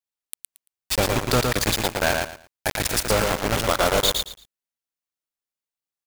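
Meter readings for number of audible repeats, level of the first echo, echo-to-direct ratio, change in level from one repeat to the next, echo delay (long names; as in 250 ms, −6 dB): 3, −4.0 dB, −4.0 dB, −13.0 dB, 113 ms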